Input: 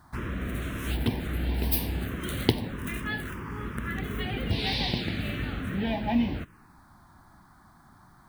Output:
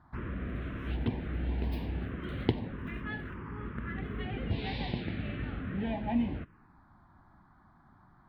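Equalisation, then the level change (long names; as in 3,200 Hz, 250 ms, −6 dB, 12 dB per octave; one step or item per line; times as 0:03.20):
high-frequency loss of the air 380 metres
−4.0 dB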